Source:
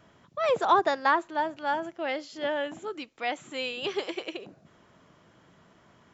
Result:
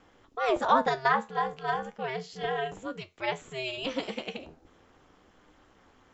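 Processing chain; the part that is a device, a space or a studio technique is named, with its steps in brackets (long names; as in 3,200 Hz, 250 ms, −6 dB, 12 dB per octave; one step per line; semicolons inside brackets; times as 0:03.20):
alien voice (ring modulation 130 Hz; flanger 0.37 Hz, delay 9.8 ms, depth 4.1 ms, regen +69%)
level +6 dB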